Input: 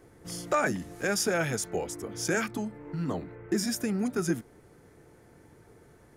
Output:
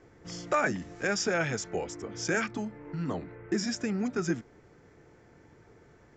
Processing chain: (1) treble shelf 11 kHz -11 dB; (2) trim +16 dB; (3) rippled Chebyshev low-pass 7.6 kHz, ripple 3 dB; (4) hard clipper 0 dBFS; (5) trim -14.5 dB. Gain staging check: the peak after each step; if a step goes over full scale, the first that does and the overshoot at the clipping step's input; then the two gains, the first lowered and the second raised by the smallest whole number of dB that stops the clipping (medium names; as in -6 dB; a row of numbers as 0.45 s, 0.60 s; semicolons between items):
-17.0 dBFS, -1.0 dBFS, -2.0 dBFS, -2.0 dBFS, -16.5 dBFS; nothing clips